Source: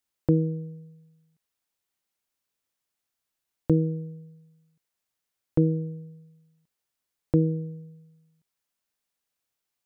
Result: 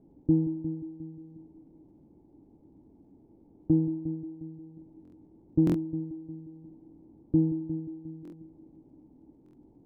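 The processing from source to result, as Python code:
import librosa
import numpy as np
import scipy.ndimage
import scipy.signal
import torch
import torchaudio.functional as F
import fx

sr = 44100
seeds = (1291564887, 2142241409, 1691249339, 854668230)

p1 = fx.delta_mod(x, sr, bps=32000, step_db=-39.0)
p2 = fx.highpass(p1, sr, hz=79.0, slope=6)
p3 = fx.low_shelf(p2, sr, hz=110.0, db=9.5)
p4 = fx.sample_hold(p3, sr, seeds[0], rate_hz=1100.0, jitter_pct=20)
p5 = p3 + (p4 * librosa.db_to_amplitude(-6.5))
p6 = fx.formant_cascade(p5, sr, vowel='u')
p7 = fx.dmg_crackle(p6, sr, seeds[1], per_s=110.0, level_db=-64.0)
p8 = fx.tilt_shelf(p7, sr, db=10.0, hz=970.0)
p9 = p8 + fx.echo_heads(p8, sr, ms=178, heads='first and second', feedback_pct=49, wet_db=-14.0, dry=0)
p10 = fx.buffer_glitch(p9, sr, at_s=(5.03, 5.65, 8.23, 9.44), block=1024, repeats=3)
y = p10 * librosa.db_to_amplitude(-7.0)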